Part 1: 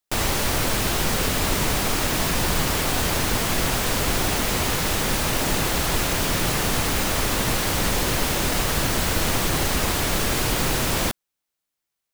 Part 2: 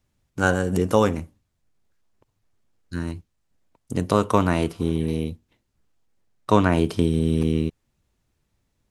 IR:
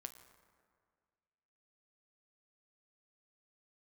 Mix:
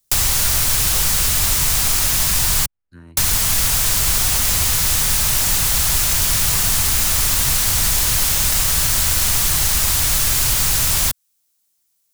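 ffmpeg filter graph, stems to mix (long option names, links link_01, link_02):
-filter_complex "[0:a]bass=frequency=250:gain=4,treble=frequency=4000:gain=15,volume=2.5dB,asplit=3[link_01][link_02][link_03];[link_01]atrim=end=2.66,asetpts=PTS-STARTPTS,afade=type=out:start_time=2.656:duration=0.004:curve=hsin[link_04];[link_02]atrim=start=2.66:end=3.17,asetpts=PTS-STARTPTS,volume=0[link_05];[link_03]atrim=start=3.17,asetpts=PTS-STARTPTS,afade=type=in:duration=0.004:curve=hsin[link_06];[link_04][link_05][link_06]concat=n=3:v=0:a=1[link_07];[1:a]equalizer=frequency=6100:width_type=o:width=1.2:gain=-12,volume=-11.5dB[link_08];[link_07][link_08]amix=inputs=2:normalize=0,acrossover=split=130|780|3300[link_09][link_10][link_11][link_12];[link_09]acompressor=threshold=-19dB:ratio=4[link_13];[link_10]acompressor=threshold=-42dB:ratio=4[link_14];[link_11]acompressor=threshold=-26dB:ratio=4[link_15];[link_12]acompressor=threshold=-16dB:ratio=4[link_16];[link_13][link_14][link_15][link_16]amix=inputs=4:normalize=0"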